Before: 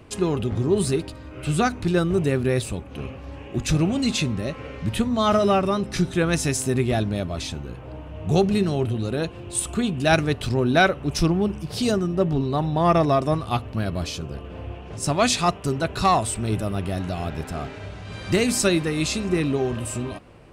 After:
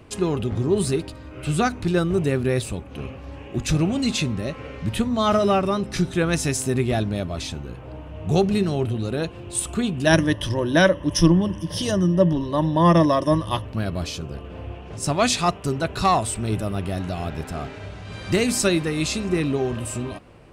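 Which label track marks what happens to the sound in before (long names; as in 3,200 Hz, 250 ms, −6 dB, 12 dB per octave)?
10.060000	13.650000	EQ curve with evenly spaced ripples crests per octave 1.2, crest to trough 14 dB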